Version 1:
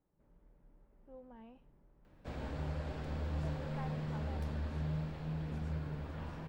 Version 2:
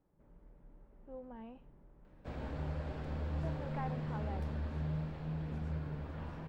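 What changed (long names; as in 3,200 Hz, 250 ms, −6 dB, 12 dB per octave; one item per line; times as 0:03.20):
speech +5.5 dB
master: add high-shelf EQ 3,900 Hz −7.5 dB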